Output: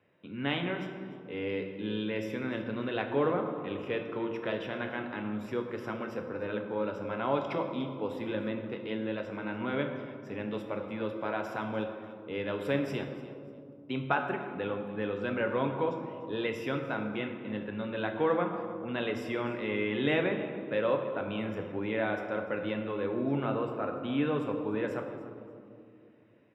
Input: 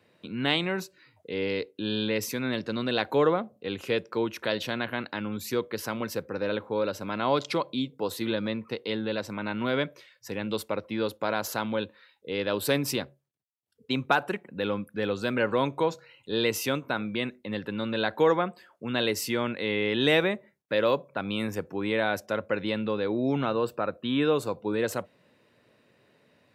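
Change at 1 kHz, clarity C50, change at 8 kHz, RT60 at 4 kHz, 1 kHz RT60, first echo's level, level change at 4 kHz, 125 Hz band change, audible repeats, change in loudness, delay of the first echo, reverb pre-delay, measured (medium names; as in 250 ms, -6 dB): -4.0 dB, 6.0 dB, under -20 dB, 1.3 s, 2.2 s, -17.5 dB, -11.0 dB, -3.0 dB, 1, -4.5 dB, 295 ms, 7 ms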